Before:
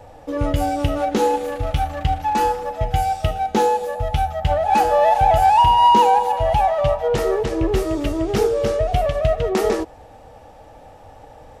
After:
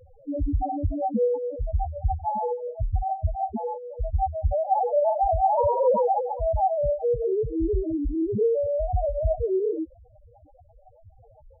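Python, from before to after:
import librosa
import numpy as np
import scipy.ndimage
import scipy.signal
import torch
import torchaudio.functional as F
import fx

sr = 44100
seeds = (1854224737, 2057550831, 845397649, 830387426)

y = fx.highpass(x, sr, hz=1100.0, slope=6, at=(3.55, 3.97), fade=0.02)
y = fx.sample_hold(y, sr, seeds[0], rate_hz=1500.0, jitter_pct=20)
y = fx.spec_topn(y, sr, count=2)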